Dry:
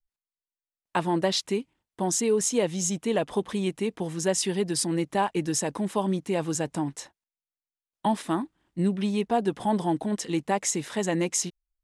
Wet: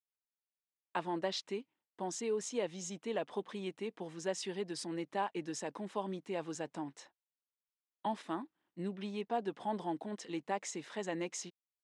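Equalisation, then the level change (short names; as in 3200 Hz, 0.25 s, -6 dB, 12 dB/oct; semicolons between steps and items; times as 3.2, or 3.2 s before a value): band-pass 210 Hz, Q 0.51; air absorption 75 m; differentiator; +15.5 dB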